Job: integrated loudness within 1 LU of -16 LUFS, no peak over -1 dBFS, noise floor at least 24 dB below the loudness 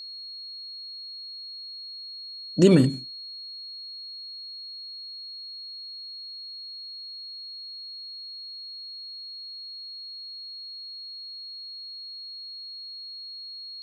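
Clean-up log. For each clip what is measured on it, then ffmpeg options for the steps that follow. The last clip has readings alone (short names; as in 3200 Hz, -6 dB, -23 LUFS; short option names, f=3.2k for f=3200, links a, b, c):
steady tone 4300 Hz; tone level -37 dBFS; loudness -31.5 LUFS; peak -5.0 dBFS; loudness target -16.0 LUFS
-> -af "bandreject=f=4.3k:w=30"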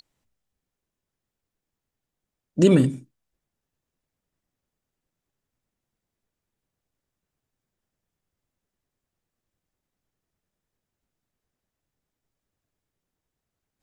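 steady tone none; loudness -19.5 LUFS; peak -5.0 dBFS; loudness target -16.0 LUFS
-> -af "volume=3.5dB"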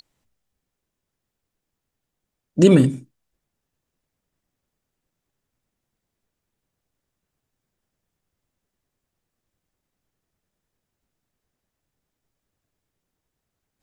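loudness -16.0 LUFS; peak -1.5 dBFS; noise floor -82 dBFS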